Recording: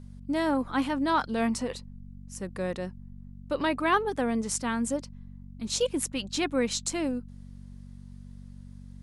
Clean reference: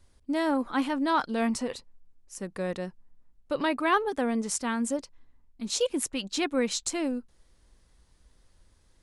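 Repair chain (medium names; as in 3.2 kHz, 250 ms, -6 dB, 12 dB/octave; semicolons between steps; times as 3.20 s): de-hum 47.4 Hz, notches 5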